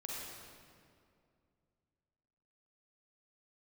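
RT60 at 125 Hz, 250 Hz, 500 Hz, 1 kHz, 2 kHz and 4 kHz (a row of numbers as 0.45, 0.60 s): 3.1, 2.8, 2.5, 2.2, 1.8, 1.6 s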